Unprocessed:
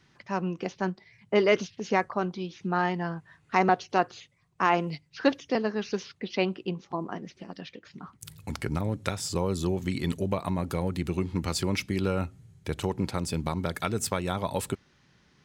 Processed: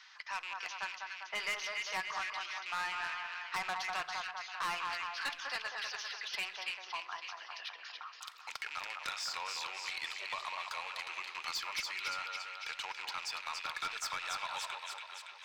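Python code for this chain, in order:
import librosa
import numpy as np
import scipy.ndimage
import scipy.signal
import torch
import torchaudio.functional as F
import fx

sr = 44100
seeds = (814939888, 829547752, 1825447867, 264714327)

y = fx.rattle_buzz(x, sr, strikes_db=-33.0, level_db=-31.0)
y = scipy.signal.sosfilt(scipy.signal.butter(4, 1000.0, 'highpass', fs=sr, output='sos'), y)
y = fx.high_shelf_res(y, sr, hz=7500.0, db=-13.5, q=1.5)
y = fx.echo_split(y, sr, split_hz=1700.0, low_ms=198, high_ms=282, feedback_pct=52, wet_db=-6.5)
y = 10.0 ** (-29.0 / 20.0) * np.tanh(y / 10.0 ** (-29.0 / 20.0))
y = fx.room_shoebox(y, sr, seeds[0], volume_m3=3800.0, walls='furnished', distance_m=0.52)
y = fx.band_squash(y, sr, depth_pct=40)
y = y * librosa.db_to_amplitude(-1.5)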